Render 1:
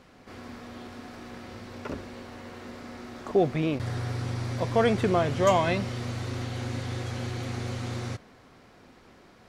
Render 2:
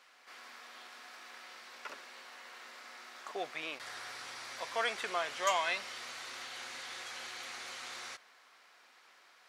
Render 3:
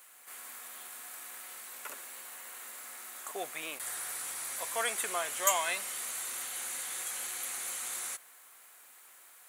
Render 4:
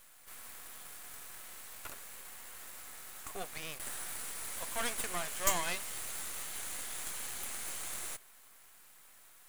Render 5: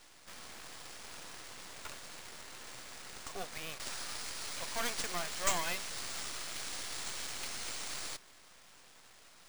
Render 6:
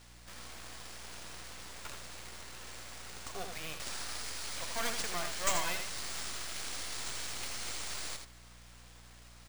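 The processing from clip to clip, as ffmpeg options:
ffmpeg -i in.wav -af "highpass=1200,volume=-1dB" out.wav
ffmpeg -i in.wav -af "aexciter=amount=8.1:drive=9:freq=7600" out.wav
ffmpeg -i in.wav -af "aeval=exprs='max(val(0),0)':channel_layout=same,volume=1dB" out.wav
ffmpeg -i in.wav -af "acrusher=samples=3:mix=1:aa=0.000001,asoftclip=type=tanh:threshold=-16.5dB" out.wav
ffmpeg -i in.wav -filter_complex "[0:a]aeval=exprs='val(0)+0.00112*(sin(2*PI*60*n/s)+sin(2*PI*2*60*n/s)/2+sin(2*PI*3*60*n/s)/3+sin(2*PI*4*60*n/s)/4+sin(2*PI*5*60*n/s)/5)':channel_layout=same,asplit=2[link_01][link_02];[link_02]aecho=0:1:82:0.473[link_03];[link_01][link_03]amix=inputs=2:normalize=0" out.wav

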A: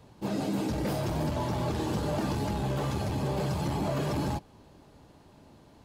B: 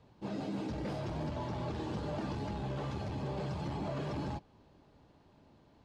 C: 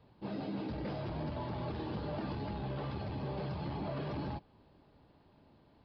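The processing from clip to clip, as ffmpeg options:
ffmpeg -i in.wav -af "lowpass=4900,volume=-7.5dB" out.wav
ffmpeg -i in.wav -af "aresample=11025,aresample=44100,volume=-1dB" out.wav

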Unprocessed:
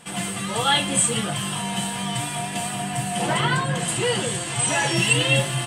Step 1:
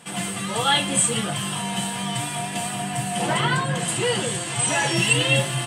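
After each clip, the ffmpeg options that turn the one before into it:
ffmpeg -i in.wav -af "highpass=81" out.wav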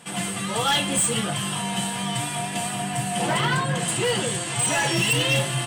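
ffmpeg -i in.wav -af "asoftclip=type=hard:threshold=-17dB" out.wav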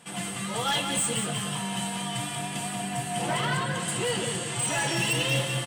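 ffmpeg -i in.wav -af "aecho=1:1:183|366|549|732|915:0.447|0.174|0.0679|0.0265|0.0103,volume=-5.5dB" out.wav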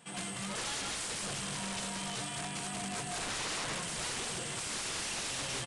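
ffmpeg -i in.wav -af "aeval=exprs='(mod(18.8*val(0)+1,2)-1)/18.8':channel_layout=same,aresample=22050,aresample=44100,volume=-5.5dB" out.wav

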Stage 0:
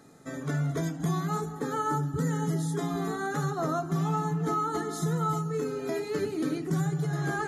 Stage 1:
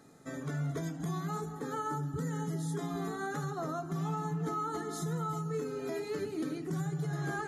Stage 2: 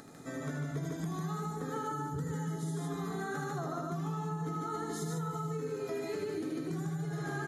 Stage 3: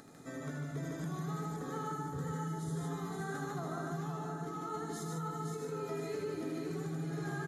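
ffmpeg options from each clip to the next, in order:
ffmpeg -i in.wav -af "alimiter=limit=-23.5dB:level=0:latency=1:release=195,volume=-3.5dB" out.wav
ffmpeg -i in.wav -af "acompressor=mode=upward:threshold=-47dB:ratio=2.5,aecho=1:1:78.72|148.7:0.562|0.794,acompressor=threshold=-33dB:ratio=6" out.wav
ffmpeg -i in.wav -af "aecho=1:1:519|1038|1557|2076|2595:0.531|0.207|0.0807|0.0315|0.0123,volume=-3.5dB" out.wav

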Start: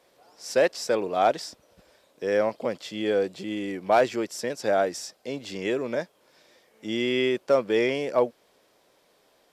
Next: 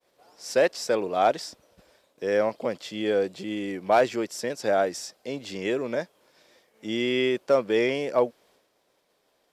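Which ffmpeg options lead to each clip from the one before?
ffmpeg -i in.wav -af "agate=range=-33dB:threshold=-57dB:ratio=3:detection=peak" out.wav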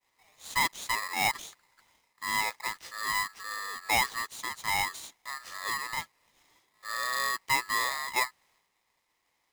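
ffmpeg -i in.wav -af "aeval=exprs='val(0)*sgn(sin(2*PI*1500*n/s))':channel_layout=same,volume=-6.5dB" out.wav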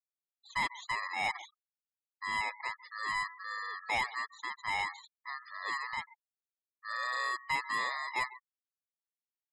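ffmpeg -i in.wav -filter_complex "[0:a]asplit=2[link_01][link_02];[link_02]adelay=139.9,volume=-20dB,highshelf=frequency=4000:gain=-3.15[link_03];[link_01][link_03]amix=inputs=2:normalize=0,asplit=2[link_04][link_05];[link_05]highpass=frequency=720:poles=1,volume=11dB,asoftclip=type=tanh:threshold=-17dB[link_06];[link_04][link_06]amix=inputs=2:normalize=0,lowpass=frequency=2800:poles=1,volume=-6dB,afftfilt=real='re*gte(hypot(re,im),0.0158)':imag='im*gte(hypot(re,im),0.0158)':win_size=1024:overlap=0.75,volume=-6dB" out.wav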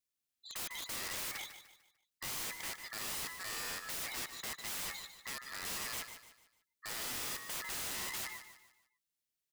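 ffmpeg -i in.wav -af "equalizer=frequency=880:width_type=o:width=1.4:gain=-12,aeval=exprs='(mod(126*val(0)+1,2)-1)/126':channel_layout=same,aecho=1:1:149|298|447|596:0.299|0.113|0.0431|0.0164,volume=6.5dB" out.wav

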